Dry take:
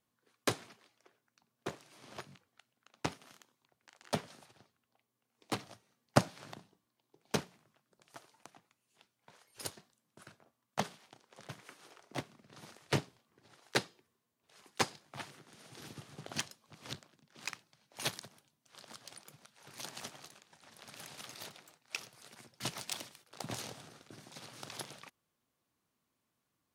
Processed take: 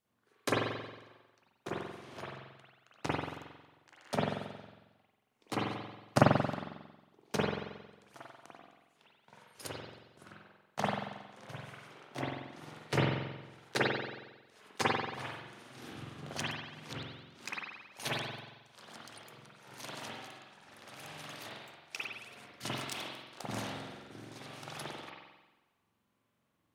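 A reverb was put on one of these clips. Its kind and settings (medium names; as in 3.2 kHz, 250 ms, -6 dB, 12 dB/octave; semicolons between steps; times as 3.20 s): spring tank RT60 1.1 s, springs 45 ms, chirp 55 ms, DRR -8 dB; trim -3.5 dB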